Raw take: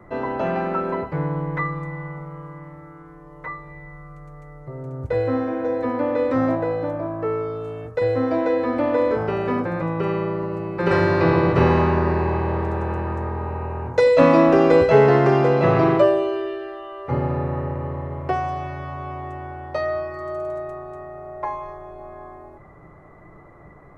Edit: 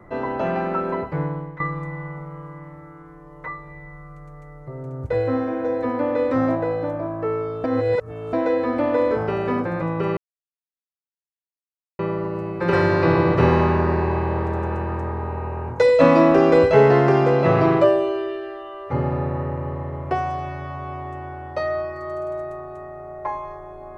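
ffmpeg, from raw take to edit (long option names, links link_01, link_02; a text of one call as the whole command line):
ffmpeg -i in.wav -filter_complex "[0:a]asplit=5[link_01][link_02][link_03][link_04][link_05];[link_01]atrim=end=1.6,asetpts=PTS-STARTPTS,afade=type=out:start_time=1.21:duration=0.39:silence=0.16788[link_06];[link_02]atrim=start=1.6:end=7.642,asetpts=PTS-STARTPTS,afade=type=in:duration=0.004:curve=hsin:silence=0.16788[link_07];[link_03]atrim=start=7.638:end=8.332,asetpts=PTS-STARTPTS,areverse[link_08];[link_04]atrim=start=8.328:end=10.17,asetpts=PTS-STARTPTS,afade=type=out:start_time=1.838:duration=0.004:curve=hsin,apad=pad_dur=1.82[link_09];[link_05]atrim=start=10.17,asetpts=PTS-STARTPTS,afade=type=in:duration=0.004:curve=hsin[link_10];[link_06][link_07]concat=n=2:v=0:a=1[link_11];[link_11][link_08]acrossfade=duration=0.004:curve1=hsin:curve2=hsin[link_12];[link_09][link_10]concat=n=2:v=0:a=1[link_13];[link_12][link_13]acrossfade=duration=0.004:curve1=hsin:curve2=hsin" out.wav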